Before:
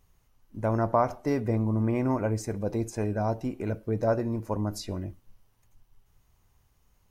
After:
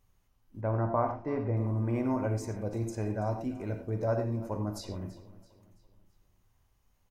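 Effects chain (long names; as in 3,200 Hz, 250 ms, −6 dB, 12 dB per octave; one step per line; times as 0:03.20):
0:00.61–0:01.57: low-pass filter 2,300 Hz 12 dB per octave
repeating echo 333 ms, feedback 45%, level −18 dB
on a send at −4 dB: convolution reverb, pre-delay 3 ms
on the sum: level −6 dB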